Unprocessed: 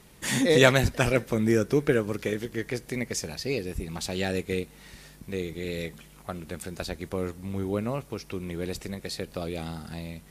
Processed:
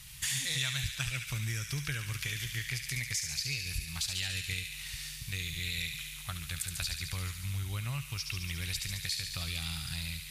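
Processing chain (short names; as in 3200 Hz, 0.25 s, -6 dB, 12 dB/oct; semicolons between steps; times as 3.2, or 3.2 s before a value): EQ curve 140 Hz 0 dB, 200 Hz -21 dB, 470 Hz -28 dB, 1000 Hz -11 dB, 2900 Hz +4 dB; compressor 6:1, threshold -37 dBFS, peak gain reduction 19.5 dB; thin delay 71 ms, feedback 76%, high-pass 2000 Hz, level -5 dB; gain +4.5 dB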